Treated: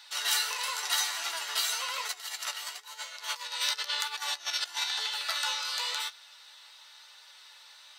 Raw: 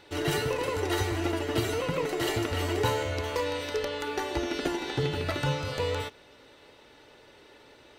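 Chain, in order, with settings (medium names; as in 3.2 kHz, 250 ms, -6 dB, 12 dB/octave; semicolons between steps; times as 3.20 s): flange 0.97 Hz, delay 9.1 ms, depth 9.5 ms, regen +33%; 2.08–4.84 s: compressor with a negative ratio -38 dBFS, ratio -0.5; high-pass 1 kHz 24 dB/octave; resonant high shelf 3.2 kHz +6.5 dB, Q 1.5; trim +6 dB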